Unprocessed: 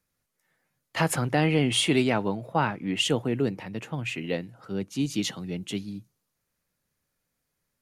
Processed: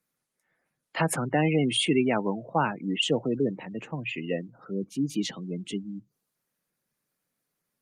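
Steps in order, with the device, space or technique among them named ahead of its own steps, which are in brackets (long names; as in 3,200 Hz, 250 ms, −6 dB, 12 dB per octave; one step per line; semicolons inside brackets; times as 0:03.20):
0:03.07–0:03.92: dynamic equaliser 570 Hz, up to +3 dB, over −39 dBFS, Q 3.9
noise-suppressed video call (high-pass filter 140 Hz 24 dB per octave; gate on every frequency bin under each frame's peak −20 dB strong; Opus 32 kbit/s 48,000 Hz)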